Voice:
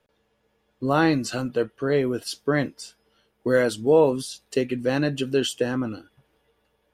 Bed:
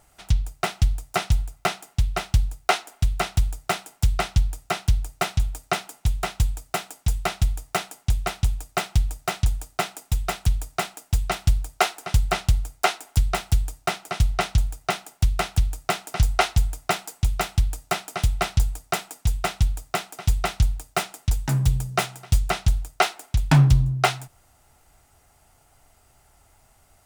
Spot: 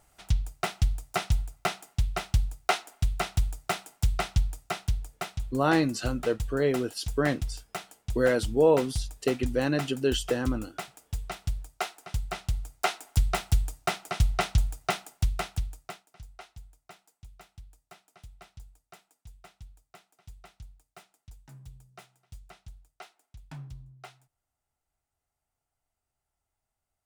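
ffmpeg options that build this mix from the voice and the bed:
ffmpeg -i stem1.wav -i stem2.wav -filter_complex "[0:a]adelay=4700,volume=-3.5dB[link_01];[1:a]volume=3dB,afade=type=out:start_time=4.41:duration=0.92:silence=0.473151,afade=type=in:start_time=12.39:duration=0.84:silence=0.398107,afade=type=out:start_time=14.96:duration=1.11:silence=0.0630957[link_02];[link_01][link_02]amix=inputs=2:normalize=0" out.wav

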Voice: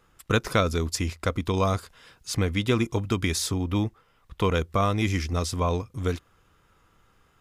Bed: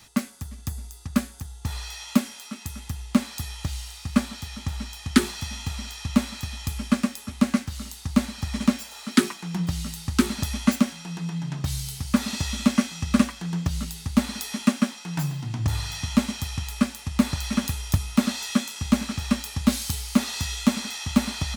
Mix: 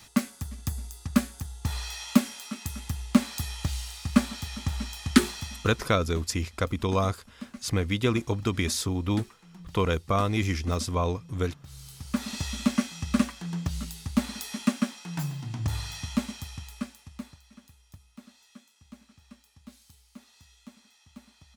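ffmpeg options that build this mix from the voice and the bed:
ffmpeg -i stem1.wav -i stem2.wav -filter_complex "[0:a]adelay=5350,volume=-1.5dB[link_01];[1:a]volume=16dB,afade=type=out:start_time=5.11:duration=0.79:silence=0.0944061,afade=type=in:start_time=11.66:duration=0.76:silence=0.158489,afade=type=out:start_time=15.77:duration=1.64:silence=0.0668344[link_02];[link_01][link_02]amix=inputs=2:normalize=0" out.wav

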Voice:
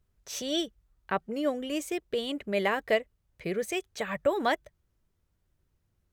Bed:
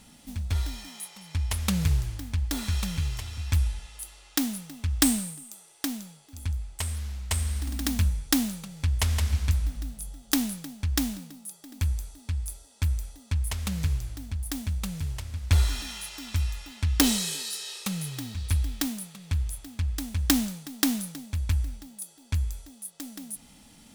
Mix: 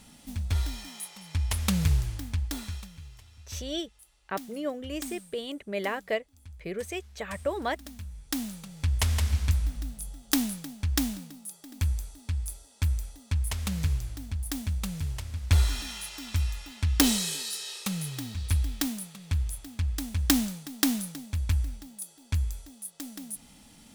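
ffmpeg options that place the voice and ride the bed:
ffmpeg -i stem1.wav -i stem2.wav -filter_complex "[0:a]adelay=3200,volume=-3.5dB[link_01];[1:a]volume=16.5dB,afade=type=out:start_time=2.24:duration=0.65:silence=0.141254,afade=type=in:start_time=8.07:duration=0.87:silence=0.149624[link_02];[link_01][link_02]amix=inputs=2:normalize=0" out.wav

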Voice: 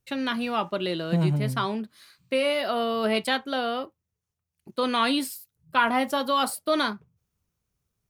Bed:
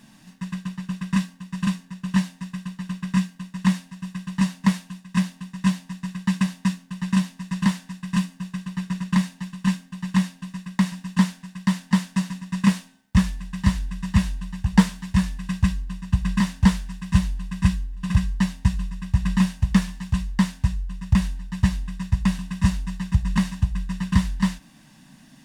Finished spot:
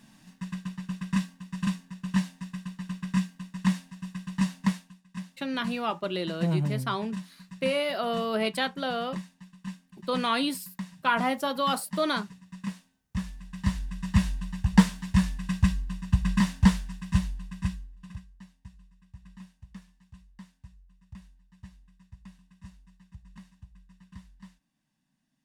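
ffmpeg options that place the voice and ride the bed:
ffmpeg -i stem1.wav -i stem2.wav -filter_complex "[0:a]adelay=5300,volume=-3dB[link_01];[1:a]volume=9dB,afade=type=out:start_time=4.6:duration=0.36:silence=0.266073,afade=type=in:start_time=13.08:duration=1.27:silence=0.199526,afade=type=out:start_time=16.57:duration=1.68:silence=0.0530884[link_02];[link_01][link_02]amix=inputs=2:normalize=0" out.wav

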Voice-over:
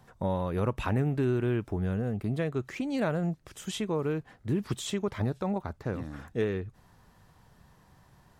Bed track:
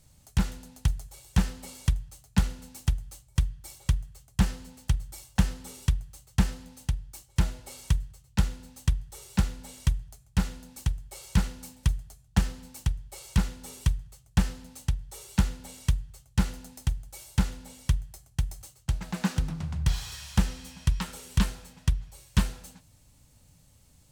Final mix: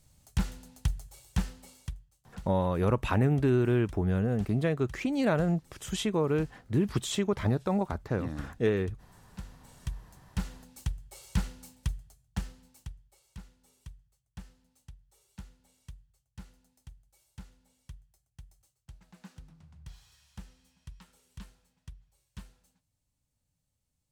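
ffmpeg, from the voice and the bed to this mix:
ffmpeg -i stem1.wav -i stem2.wav -filter_complex "[0:a]adelay=2250,volume=2.5dB[link_01];[1:a]volume=11.5dB,afade=type=out:start_time=1.16:duration=0.93:silence=0.141254,afade=type=in:start_time=9.3:duration=1.44:silence=0.16788,afade=type=out:start_time=11.47:duration=1.75:silence=0.141254[link_02];[link_01][link_02]amix=inputs=2:normalize=0" out.wav

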